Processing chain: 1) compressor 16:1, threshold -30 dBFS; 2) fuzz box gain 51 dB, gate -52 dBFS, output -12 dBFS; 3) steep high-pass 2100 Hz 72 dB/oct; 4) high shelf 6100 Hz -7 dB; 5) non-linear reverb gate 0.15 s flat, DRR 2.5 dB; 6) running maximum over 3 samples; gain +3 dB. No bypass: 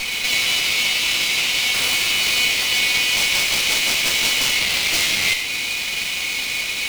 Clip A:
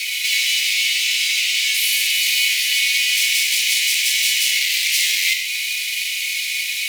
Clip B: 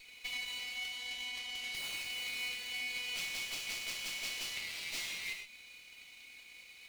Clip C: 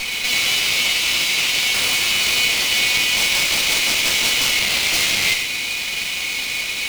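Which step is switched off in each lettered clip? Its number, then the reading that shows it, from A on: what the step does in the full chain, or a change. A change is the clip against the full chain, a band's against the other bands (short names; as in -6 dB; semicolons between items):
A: 6, distortion -6 dB; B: 2, distortion -4 dB; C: 1, mean gain reduction 6.5 dB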